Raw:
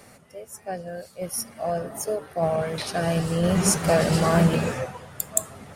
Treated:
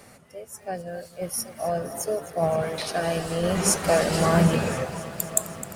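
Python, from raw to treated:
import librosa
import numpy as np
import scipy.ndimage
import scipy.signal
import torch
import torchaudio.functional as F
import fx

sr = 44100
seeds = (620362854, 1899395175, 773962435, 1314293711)

y = fx.peak_eq(x, sr, hz=130.0, db=-13.5, octaves=0.74, at=(2.7, 4.19))
y = fx.echo_crushed(y, sr, ms=260, feedback_pct=80, bits=8, wet_db=-15.0)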